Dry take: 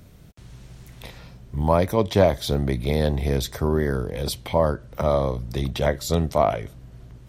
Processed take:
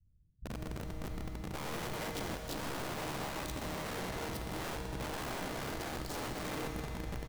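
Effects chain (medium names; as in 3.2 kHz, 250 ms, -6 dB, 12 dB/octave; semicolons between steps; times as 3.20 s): gate with hold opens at -36 dBFS; amplifier tone stack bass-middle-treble 10-0-1; peak limiter -34 dBFS, peak gain reduction 10 dB; 2.10–2.60 s: compression 8:1, threshold -45 dBFS, peak gain reduction 8.5 dB; tilt shelf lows +8 dB, about 720 Hz; bands offset in time lows, highs 50 ms, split 180 Hz; integer overflow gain 39 dB; reverberation RT60 3.7 s, pre-delay 38 ms, DRR 3 dB; trim +3 dB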